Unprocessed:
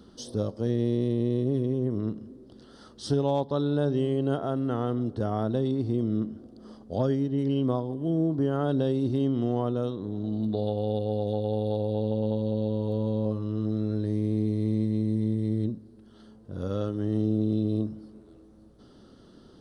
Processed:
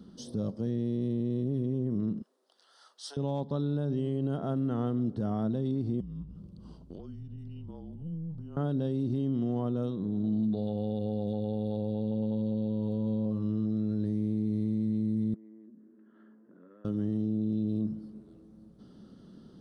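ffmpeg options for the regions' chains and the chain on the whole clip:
-filter_complex "[0:a]asettb=1/sr,asplit=3[a][b][c];[a]atrim=end=2.224[d];[b]atrim=start=2.22:end=3.17,asetpts=PTS-STARTPTS,afade=t=in:d=0.004:c=qsin,afade=t=out:st=0.946:d=0.004:c=qsin,highpass=f=720:w=0.5412,highpass=f=720:w=1.3066,highshelf=f=4.6k:g=4[e];[c]atrim=start=3.166[f];[d][e]acrossfade=d=0.004:c1=hsin:c2=qsin[g];[g][f]acrossfade=d=0.004:c1=qsin:c2=hsin,asettb=1/sr,asplit=3[h][i][j];[h]atrim=end=6.004[k];[i]atrim=start=6:end=8.57,asetpts=PTS-STARTPTS,afade=t=in:d=0.004:c=qsin,afade=t=out:st=2.566:d=0.004:c=qsin,afreqshift=-160,bandreject=f=1.7k:w=5.6,acompressor=threshold=-37dB:ratio=10:attack=3.2:release=140:knee=1:detection=peak[l];[j]atrim=start=8.566[m];[k][l]acrossfade=d=0.004:c1=hsin:c2=qsin[n];[n][m]acrossfade=d=0.004:c1=qsin:c2=hsin,asettb=1/sr,asplit=3[o][p][q];[o]atrim=end=15.344[r];[p]atrim=start=15.34:end=16.85,asetpts=PTS-STARTPTS,afade=t=in:d=0.004:c=qsin,afade=t=out:st=1.506:d=0.004:c=qsin,acompressor=threshold=-40dB:ratio=12:attack=3.2:release=140:knee=1:detection=peak,highpass=f=290:w=0.5412,highpass=f=290:w=1.3066,equalizer=f=480:t=q:w=4:g=-7,equalizer=f=780:t=q:w=4:g=-9,equalizer=f=1.7k:t=q:w=4:g=6,lowpass=f=2k:w=0.5412,lowpass=f=2k:w=1.3066,asplit=2[s][t];[t]adelay=18,volume=-9dB[u];[s][u]amix=inputs=2:normalize=0,atrim=end_sample=66591[v];[q]atrim=start=16.846[w];[r][v]acrossfade=d=0.004:c1=hsin:c2=qsin[x];[x][w]acrossfade=d=0.004:c1=qsin:c2=hsin,equalizer=f=180:t=o:w=1:g=12.5,alimiter=limit=-16.5dB:level=0:latency=1:release=59,volume=-6dB"

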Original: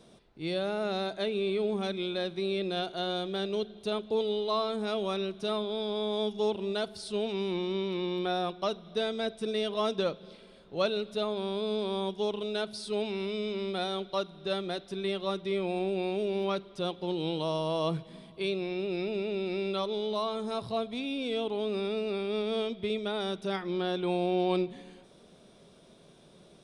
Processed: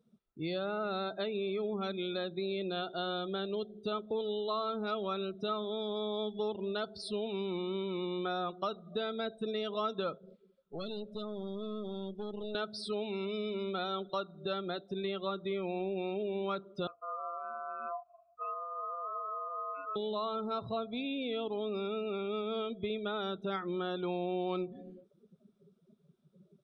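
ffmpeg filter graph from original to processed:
-filter_complex "[0:a]asettb=1/sr,asplit=3[a][b][c];[a]atrim=end=10.184[d];[b]atrim=start=10.18:end=12.55,asetpts=PTS-STARTPTS,afade=t=in:d=0.004:c=qsin,afade=t=out:st=2.366:d=0.004:c=qsin,acrossover=split=330|3000[e][f][g];[f]acompressor=threshold=-38dB:ratio=8:attack=3.2:release=140:knee=2.83:detection=peak[h];[e][h][g]amix=inputs=3:normalize=0,aeval=exprs='(tanh(63.1*val(0)+0.65)-tanh(0.65))/63.1':c=same[i];[c]atrim=start=12.546[j];[d][i]acrossfade=d=0.004:c1=hsin:c2=qsin[k];[k][j]acrossfade=d=0.004:c1=qsin:c2=hsin,asettb=1/sr,asplit=3[l][m][n];[l]atrim=end=16.874[o];[m]atrim=start=16.87:end=19.96,asetpts=PTS-STARTPTS,afade=t=in:d=0.004:c=qsin,afade=t=out:st=3.086:d=0.004:c=qsin,aeval=exprs='val(0)*sin(2*PI*860*n/s)':c=same,asplit=3[p][q][r];[p]bandpass=f=730:t=q:w=8,volume=0dB[s];[q]bandpass=f=1.09k:t=q:w=8,volume=-6dB[t];[r]bandpass=f=2.44k:t=q:w=8,volume=-9dB[u];[s][t][u]amix=inputs=3:normalize=0,aeval=exprs='val(0)+0.000251*(sin(2*PI*60*n/s)+sin(2*PI*2*60*n/s)/2+sin(2*PI*3*60*n/s)/3+sin(2*PI*4*60*n/s)/4+sin(2*PI*5*60*n/s)/5)':c=same[v];[n]atrim=start=19.956[w];[o][v]acrossfade=d=0.004:c1=hsin:c2=qsin[x];[x][w]acrossfade=d=0.004:c1=qsin:c2=hsin,afftdn=nr=30:nf=-43,equalizer=f=1.3k:t=o:w=0.22:g=12,acompressor=threshold=-39dB:ratio=2.5,volume=3dB"

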